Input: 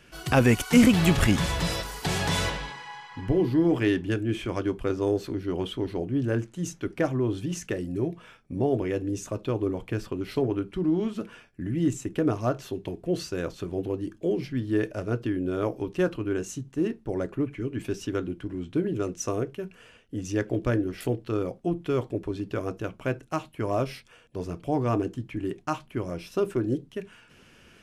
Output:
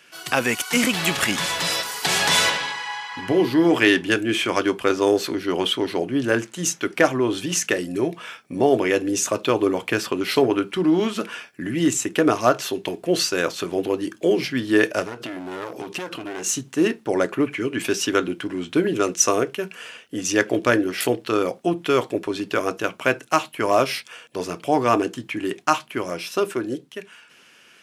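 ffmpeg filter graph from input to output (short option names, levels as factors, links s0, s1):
-filter_complex "[0:a]asettb=1/sr,asplit=3[s0][s1][s2];[s0]atrim=end=15.034[s3];[s1]atrim=start=15.03:end=16.57,asetpts=PTS-STARTPTS,afade=t=in:d=0.004:c=qsin,afade=t=out:st=1.536:d=0.004:c=qsin,aeval=exprs='clip(val(0),-1,0.0237)':c=same,acompressor=threshold=0.0178:ratio=8:attack=3.2:release=140:knee=1:detection=peak[s4];[s2]atrim=start=16.566[s5];[s3][s4]acrossfade=d=0.004:c1=hsin:c2=qsin[s6];[s6][s5]acrossfade=d=0.004:c1=qsin:c2=hsin,highpass=180,tiltshelf=f=640:g=-6.5,dynaudnorm=f=240:g=13:m=3.98"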